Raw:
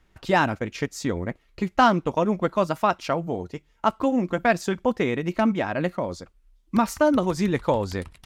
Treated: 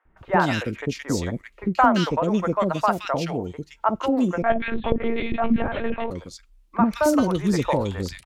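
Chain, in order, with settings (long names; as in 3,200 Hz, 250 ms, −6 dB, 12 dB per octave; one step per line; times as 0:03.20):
three-band delay without the direct sound mids, lows, highs 50/170 ms, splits 520/1,900 Hz
0:04.42–0:06.11: one-pitch LPC vocoder at 8 kHz 230 Hz
level +2.5 dB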